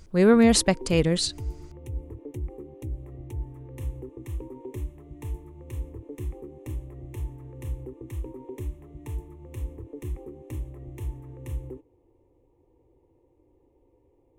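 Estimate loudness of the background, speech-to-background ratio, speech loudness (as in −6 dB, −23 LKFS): −38.0 LKFS, 17.0 dB, −21.0 LKFS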